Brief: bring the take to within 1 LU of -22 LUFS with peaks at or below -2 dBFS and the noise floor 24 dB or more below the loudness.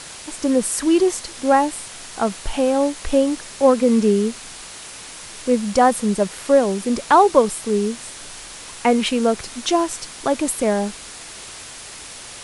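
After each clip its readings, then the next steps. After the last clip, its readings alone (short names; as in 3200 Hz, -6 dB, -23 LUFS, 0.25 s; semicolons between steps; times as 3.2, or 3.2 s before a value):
noise floor -37 dBFS; noise floor target -43 dBFS; loudness -19.0 LUFS; peak -1.5 dBFS; loudness target -22.0 LUFS
-> denoiser 6 dB, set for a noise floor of -37 dBFS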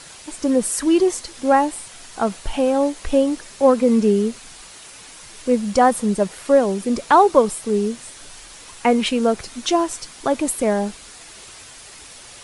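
noise floor -42 dBFS; noise floor target -43 dBFS
-> denoiser 6 dB, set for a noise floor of -42 dBFS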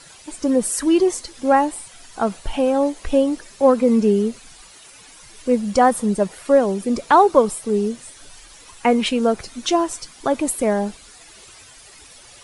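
noise floor -45 dBFS; loudness -19.5 LUFS; peak -1.5 dBFS; loudness target -22.0 LUFS
-> gain -2.5 dB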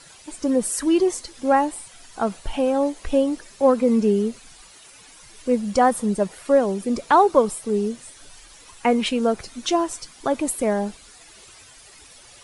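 loudness -22.0 LUFS; peak -4.0 dBFS; noise floor -48 dBFS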